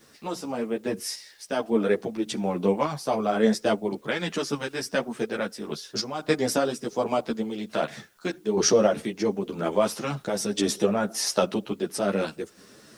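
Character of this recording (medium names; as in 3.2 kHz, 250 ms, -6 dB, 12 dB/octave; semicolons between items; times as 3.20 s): random-step tremolo, depth 70%; a quantiser's noise floor 12-bit, dither triangular; a shimmering, thickened sound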